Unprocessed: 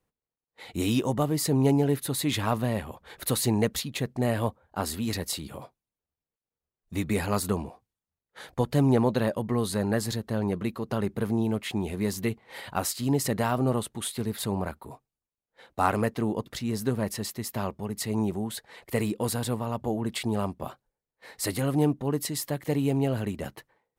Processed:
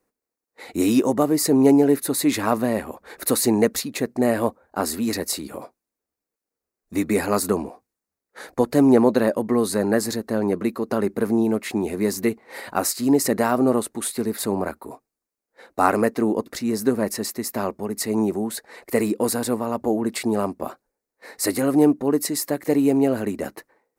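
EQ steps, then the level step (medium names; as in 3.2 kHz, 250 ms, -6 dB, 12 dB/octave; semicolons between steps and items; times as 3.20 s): resonant low shelf 190 Hz -10 dB, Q 1.5; peaking EQ 900 Hz -2.5 dB 0.54 oct; peaking EQ 3.2 kHz -12.5 dB 0.46 oct; +7.0 dB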